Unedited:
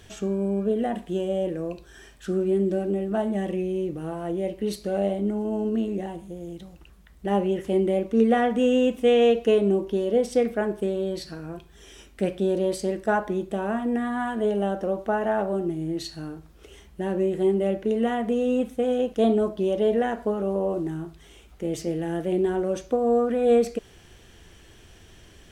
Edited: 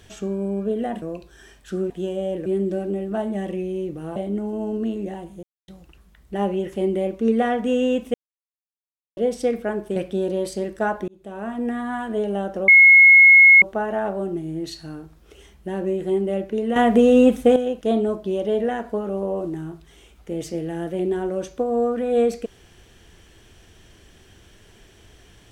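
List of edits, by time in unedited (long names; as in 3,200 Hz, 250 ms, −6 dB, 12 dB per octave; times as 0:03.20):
0:01.02–0:01.58: move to 0:02.46
0:04.16–0:05.08: remove
0:06.35–0:06.60: silence
0:09.06–0:10.09: silence
0:10.88–0:12.23: remove
0:13.35–0:13.90: fade in
0:14.95: insert tone 2,170 Hz −6.5 dBFS 0.94 s
0:18.09–0:18.89: clip gain +10 dB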